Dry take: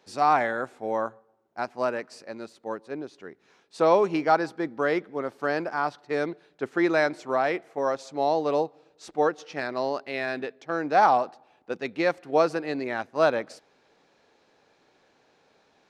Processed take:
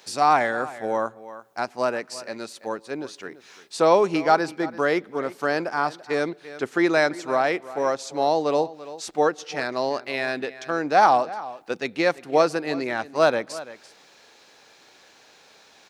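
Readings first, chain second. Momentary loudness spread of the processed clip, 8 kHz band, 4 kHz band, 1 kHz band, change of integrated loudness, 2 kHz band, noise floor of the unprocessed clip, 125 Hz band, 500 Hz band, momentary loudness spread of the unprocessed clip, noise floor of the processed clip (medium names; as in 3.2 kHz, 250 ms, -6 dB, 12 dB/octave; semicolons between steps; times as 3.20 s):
15 LU, no reading, +7.0 dB, +3.0 dB, +2.5 dB, +3.5 dB, -65 dBFS, +2.5 dB, +2.5 dB, 14 LU, -54 dBFS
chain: treble shelf 4.8 kHz +9 dB; echo from a far wall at 58 m, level -17 dB; tape noise reduction on one side only encoder only; trim +2.5 dB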